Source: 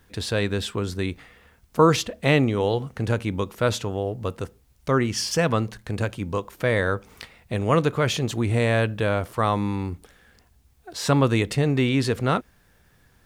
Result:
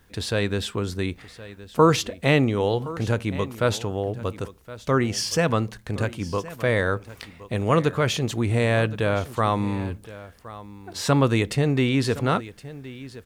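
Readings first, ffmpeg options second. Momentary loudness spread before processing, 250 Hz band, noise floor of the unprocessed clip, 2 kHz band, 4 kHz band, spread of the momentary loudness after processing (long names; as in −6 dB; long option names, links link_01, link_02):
11 LU, 0.0 dB, −59 dBFS, 0.0 dB, 0.0 dB, 18 LU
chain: -af "aecho=1:1:1068:0.141"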